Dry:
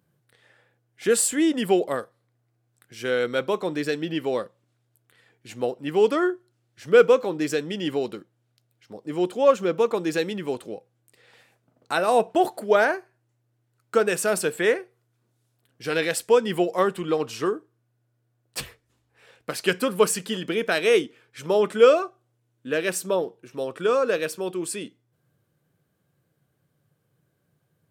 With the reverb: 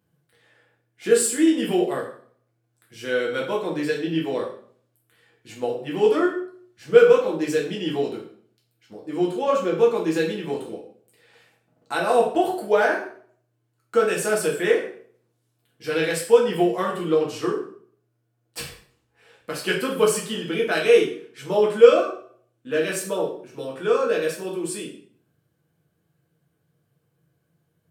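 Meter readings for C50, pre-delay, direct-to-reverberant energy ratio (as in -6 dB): 6.5 dB, 5 ms, -3.5 dB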